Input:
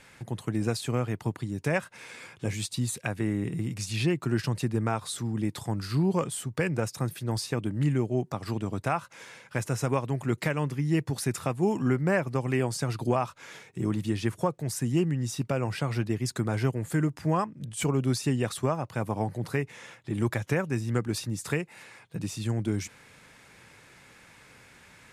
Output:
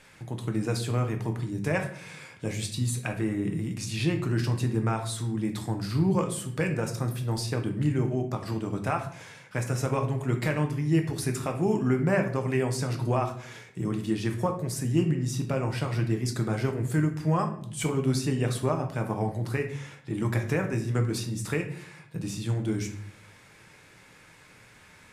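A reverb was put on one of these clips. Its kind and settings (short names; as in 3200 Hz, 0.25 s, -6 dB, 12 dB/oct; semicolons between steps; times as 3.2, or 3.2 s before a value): shoebox room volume 87 m³, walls mixed, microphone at 0.51 m; gain -1.5 dB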